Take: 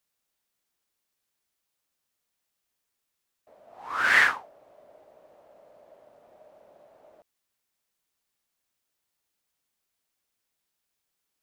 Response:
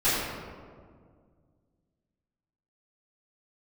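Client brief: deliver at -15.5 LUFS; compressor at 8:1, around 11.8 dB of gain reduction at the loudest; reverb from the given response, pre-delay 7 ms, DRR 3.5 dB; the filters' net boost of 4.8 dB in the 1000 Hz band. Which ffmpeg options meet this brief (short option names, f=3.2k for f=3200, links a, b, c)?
-filter_complex "[0:a]equalizer=f=1k:t=o:g=6.5,acompressor=threshold=-25dB:ratio=8,asplit=2[a][b];[1:a]atrim=start_sample=2205,adelay=7[c];[b][c]afir=irnorm=-1:irlink=0,volume=-18.5dB[d];[a][d]amix=inputs=2:normalize=0,volume=13.5dB"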